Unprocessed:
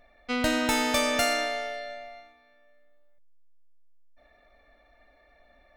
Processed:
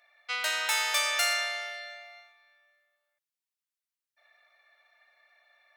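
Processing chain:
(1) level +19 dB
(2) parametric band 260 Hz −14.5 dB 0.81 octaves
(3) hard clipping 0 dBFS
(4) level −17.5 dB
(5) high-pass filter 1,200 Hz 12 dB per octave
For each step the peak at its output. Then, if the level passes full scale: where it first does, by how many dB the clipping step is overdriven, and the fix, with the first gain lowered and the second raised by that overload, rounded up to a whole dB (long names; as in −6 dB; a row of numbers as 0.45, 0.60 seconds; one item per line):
+7.5, +7.0, 0.0, −17.5, −14.0 dBFS
step 1, 7.0 dB
step 1 +12 dB, step 4 −10.5 dB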